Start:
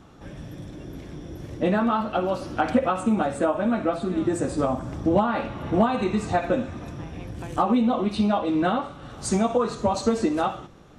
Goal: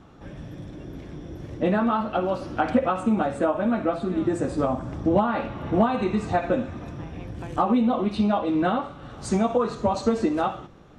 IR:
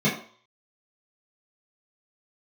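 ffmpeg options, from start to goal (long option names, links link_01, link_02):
-af "lowpass=frequency=3800:poles=1"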